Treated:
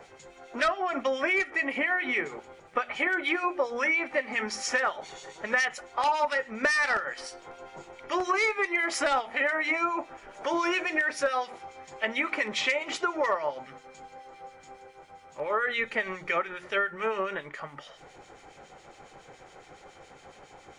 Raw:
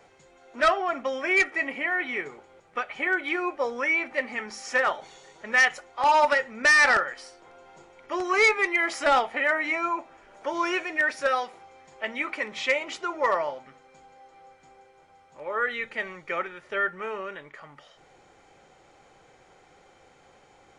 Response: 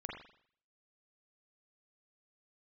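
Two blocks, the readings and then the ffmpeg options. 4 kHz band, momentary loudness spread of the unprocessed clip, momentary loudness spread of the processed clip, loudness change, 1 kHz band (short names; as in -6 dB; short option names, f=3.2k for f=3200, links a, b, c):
-1.0 dB, 14 LU, 19 LU, -3.0 dB, -3.0 dB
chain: -filter_complex "[0:a]bandreject=f=60:t=h:w=6,bandreject=f=120:t=h:w=6,bandreject=f=180:t=h:w=6,bandreject=f=240:t=h:w=6,bandreject=f=300:t=h:w=6,bandreject=f=360:t=h:w=6,acrossover=split=2000[a][b];[a]aeval=exprs='val(0)*(1-0.7/2+0.7/2*cos(2*PI*7.2*n/s))':c=same[c];[b]aeval=exprs='val(0)*(1-0.7/2-0.7/2*cos(2*PI*7.2*n/s))':c=same[d];[c][d]amix=inputs=2:normalize=0,acompressor=threshold=-33dB:ratio=6,volume=9dB"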